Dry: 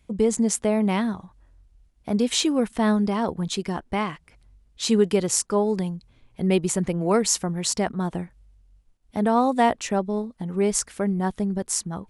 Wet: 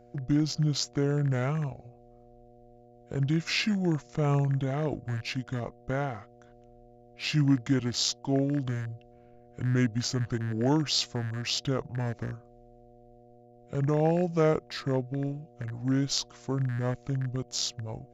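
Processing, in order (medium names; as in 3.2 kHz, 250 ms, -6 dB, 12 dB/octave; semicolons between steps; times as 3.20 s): rattle on loud lows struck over -28 dBFS, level -28 dBFS; in parallel at -10 dB: crossover distortion -36.5 dBFS; on the sum: wide varispeed 0.667×; mains buzz 120 Hz, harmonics 6, -48 dBFS 0 dB/octave; trim -7.5 dB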